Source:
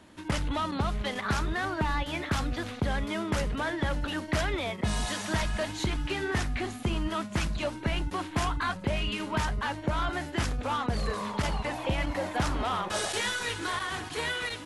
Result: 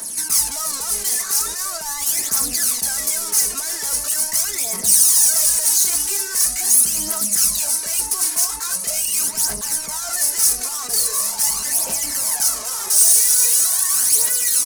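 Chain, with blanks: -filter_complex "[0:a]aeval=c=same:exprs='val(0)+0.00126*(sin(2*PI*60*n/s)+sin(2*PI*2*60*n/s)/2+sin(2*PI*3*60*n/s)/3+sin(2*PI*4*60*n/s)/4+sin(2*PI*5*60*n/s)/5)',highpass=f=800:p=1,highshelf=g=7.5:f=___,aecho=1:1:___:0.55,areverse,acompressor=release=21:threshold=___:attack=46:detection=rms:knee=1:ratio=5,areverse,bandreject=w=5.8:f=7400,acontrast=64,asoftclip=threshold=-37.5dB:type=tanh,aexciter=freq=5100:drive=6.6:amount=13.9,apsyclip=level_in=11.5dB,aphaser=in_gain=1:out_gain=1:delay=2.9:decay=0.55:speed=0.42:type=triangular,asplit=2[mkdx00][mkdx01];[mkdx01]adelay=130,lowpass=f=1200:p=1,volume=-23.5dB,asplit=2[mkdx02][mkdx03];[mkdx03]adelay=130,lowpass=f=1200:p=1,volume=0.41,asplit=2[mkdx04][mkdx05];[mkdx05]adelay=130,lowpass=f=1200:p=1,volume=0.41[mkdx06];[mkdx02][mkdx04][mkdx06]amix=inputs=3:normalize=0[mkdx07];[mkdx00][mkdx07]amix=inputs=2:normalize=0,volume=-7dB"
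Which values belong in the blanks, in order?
6800, 4.5, -43dB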